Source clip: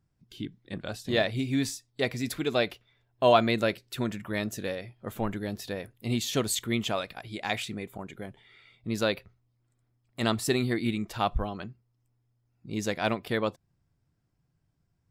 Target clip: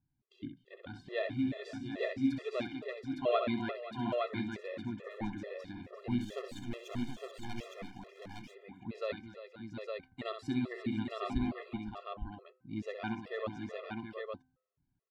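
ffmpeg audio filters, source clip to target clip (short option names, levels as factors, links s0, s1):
-filter_complex "[0:a]lowpass=3200,equalizer=f=260:w=6.7:g=10.5,bandreject=f=257.1:t=h:w=4,bandreject=f=514.2:t=h:w=4,bandreject=f=771.3:t=h:w=4,bandreject=f=1028.4:t=h:w=4,bandreject=f=1285.5:t=h:w=4,bandreject=f=1542.6:t=h:w=4,asettb=1/sr,asplit=3[s0][s1][s2];[s0]atrim=end=6.184[s3];[s1]atrim=start=6.18:end=7.69,asetpts=PTS-STARTPTS,afade=t=in:d=0.004:c=qsin,afade=t=out:st=1.506:d=0.004:c=qsin,aeval=exprs='max(val(0),0)':c=same[s4];[s2]atrim=start=7.686[s5];[s3][s4]acrossfade=d=0.004:c1=hsin:c2=qsin[s6];[s6][s5]acrossfade=d=0.004:c1=qsin:c2=hsin,aecho=1:1:65|252|348|519|725|861:0.376|0.119|0.237|0.168|0.398|0.668,afftfilt=real='re*gt(sin(2*PI*2.3*pts/sr)*(1-2*mod(floor(b*sr/1024/350),2)),0)':imag='im*gt(sin(2*PI*2.3*pts/sr)*(1-2*mod(floor(b*sr/1024/350),2)),0)':win_size=1024:overlap=0.75,volume=0.376"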